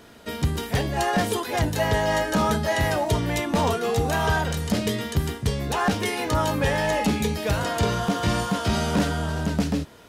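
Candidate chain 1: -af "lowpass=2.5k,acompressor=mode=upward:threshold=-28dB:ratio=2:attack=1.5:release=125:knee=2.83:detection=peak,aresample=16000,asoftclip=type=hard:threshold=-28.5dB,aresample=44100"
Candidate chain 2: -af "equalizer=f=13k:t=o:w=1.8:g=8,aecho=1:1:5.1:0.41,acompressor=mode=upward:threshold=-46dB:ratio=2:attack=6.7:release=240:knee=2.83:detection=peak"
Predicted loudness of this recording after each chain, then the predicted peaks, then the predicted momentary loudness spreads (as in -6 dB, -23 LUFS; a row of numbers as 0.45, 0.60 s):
-31.0, -23.0 LUFS; -26.5, -8.5 dBFS; 2, 4 LU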